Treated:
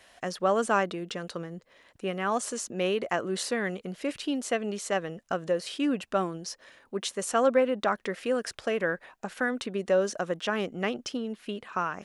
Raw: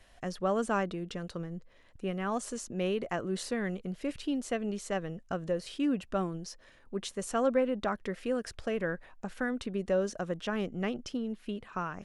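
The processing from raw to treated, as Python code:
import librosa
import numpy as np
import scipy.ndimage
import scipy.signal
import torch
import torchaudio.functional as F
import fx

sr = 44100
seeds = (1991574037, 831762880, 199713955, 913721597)

y = fx.highpass(x, sr, hz=420.0, slope=6)
y = y * librosa.db_to_amplitude(7.0)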